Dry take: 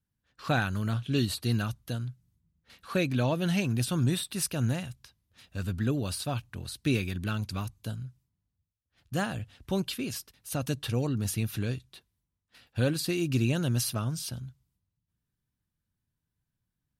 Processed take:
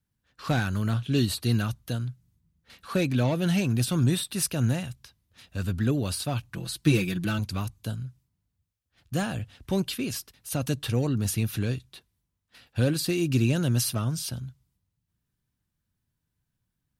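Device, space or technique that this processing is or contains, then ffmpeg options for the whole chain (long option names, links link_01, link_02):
one-band saturation: -filter_complex "[0:a]asettb=1/sr,asplit=3[link_01][link_02][link_03];[link_01]atrim=end=6.534[link_04];[link_02]atrim=start=6.53:end=7.39,asetpts=PTS-STARTPTS,afade=type=in:duration=0.004:curve=qsin,afade=type=out:start_time=0.856:duration=0.004:curve=qsin,aecho=1:1:6:0.92,atrim=end_sample=37926[link_05];[link_03]atrim=start=7.386[link_06];[link_04][link_05]acrossfade=duration=0.004:curve1=hsin:curve2=qsin[link_07];[link_07][link_06]acrossfade=duration=0.004:curve1=qsin:curve2=hsin,acrossover=split=460|5000[link_08][link_09][link_10];[link_09]asoftclip=type=tanh:threshold=-31dB[link_11];[link_08][link_11][link_10]amix=inputs=3:normalize=0,volume=3.5dB"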